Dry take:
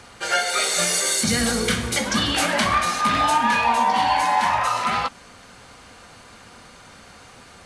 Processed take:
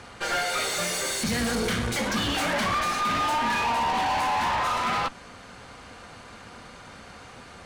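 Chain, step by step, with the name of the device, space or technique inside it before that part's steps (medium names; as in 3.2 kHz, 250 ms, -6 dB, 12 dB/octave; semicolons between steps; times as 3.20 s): tube preamp driven hard (valve stage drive 27 dB, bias 0.6; treble shelf 4.8 kHz -8 dB); trim +4.5 dB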